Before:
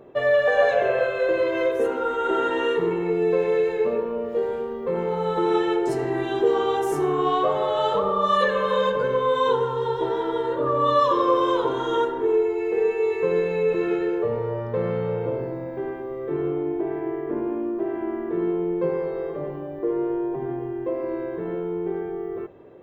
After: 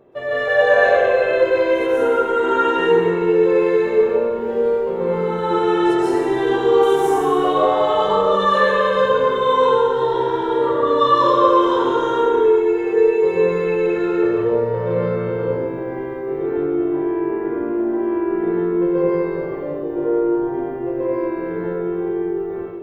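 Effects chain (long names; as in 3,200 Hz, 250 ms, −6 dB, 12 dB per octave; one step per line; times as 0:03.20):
dense smooth reverb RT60 1.6 s, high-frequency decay 0.85×, pre-delay 115 ms, DRR −9.5 dB
level −4.5 dB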